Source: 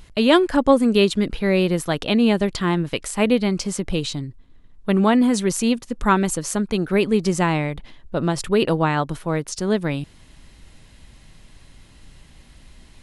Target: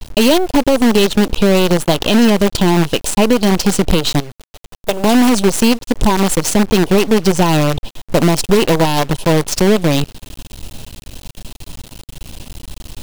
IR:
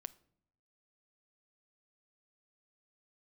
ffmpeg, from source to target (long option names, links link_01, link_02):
-filter_complex "[0:a]aeval=exprs='if(lt(val(0),0),0.447*val(0),val(0))':channel_layout=same,acompressor=threshold=-27dB:ratio=5,asuperstop=centerf=1600:order=20:qfactor=1.1,asettb=1/sr,asplit=3[link_01][link_02][link_03];[link_01]atrim=end=4.204[link_04];[link_02]atrim=start=4.2:end=5.04,asetpts=PTS-STARTPTS,afade=type=in:duration=0.004:curve=qsin,afade=type=out:start_time=0.836:duration=0.004:curve=qsin,lowshelf=frequency=380:width_type=q:width=1.5:gain=-11.5[link_05];[link_03]atrim=start=5.036[link_06];[link_04][link_05]acrossfade=duration=0.004:curve1=hsin:curve2=qsin[link_07];[link_07][link_06]acrossfade=duration=0.004:curve1=qsin:curve2=hsin,acrusher=bits=6:dc=4:mix=0:aa=0.000001,alimiter=level_in=19dB:limit=-1dB:release=50:level=0:latency=1,adynamicequalizer=threshold=0.0224:dfrequency=5800:dqfactor=0.7:tfrequency=5800:tqfactor=0.7:attack=5:release=100:ratio=0.375:range=2:mode=cutabove:tftype=highshelf,volume=-1dB"